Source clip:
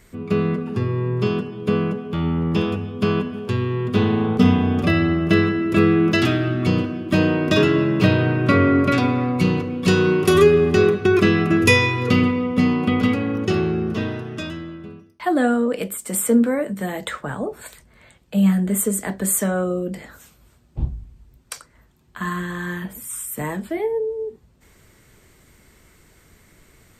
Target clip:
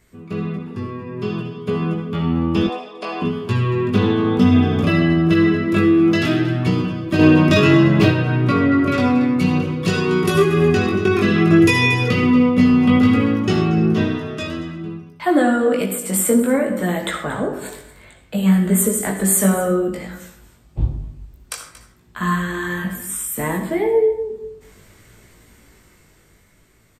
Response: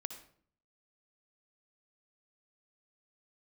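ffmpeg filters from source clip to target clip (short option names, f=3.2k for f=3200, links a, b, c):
-filter_complex "[0:a]aecho=1:1:231:0.158[a];[1:a]atrim=start_sample=2205[b];[a][b]afir=irnorm=-1:irlink=0,alimiter=limit=-11dB:level=0:latency=1:release=186,asettb=1/sr,asplit=3[c][d][e];[c]atrim=end=2.674[f];[d]atrim=start=2.67:end=3.22,asetpts=PTS-STARTPTS,afade=t=in:d=0.004:c=qsin,afade=t=out:st=0.546:d=0.004:c=qsin,highpass=f=390:w=0.5412,highpass=f=390:w=1.3066,equalizer=f=400:t=q:w=4:g=-7,equalizer=f=740:t=q:w=4:g=7,equalizer=f=1.4k:t=q:w=4:g=-9,equalizer=f=3.1k:t=q:w=4:g=-7,equalizer=f=6.7k:t=q:w=4:g=-5,lowpass=f=9k:w=0.5412,lowpass=f=9k:w=1.3066[g];[e]atrim=start=3.216[h];[f][g]acrossfade=d=0.004:c1=hsin:c2=qsin[i];[i][h]acrossfade=d=0.004:c1=qsin:c2=hsin,asettb=1/sr,asplit=3[j][k][l];[j]atrim=end=7.194[m];[k]atrim=start=7.19:end=8.1,asetpts=PTS-STARTPTS,afade=t=in:d=0.004:c=qsin,afade=t=out:st=0.906:d=0.004:c=qsin,acontrast=35[n];[l]atrim=start=8.096[o];[m][n]acrossfade=d=0.004:c1=hsin:c2=qsin[p];[p][o]acrossfade=d=0.004:c1=qsin:c2=hsin,flanger=delay=17:depth=3.8:speed=0.59,dynaudnorm=f=280:g=13:m=10dB"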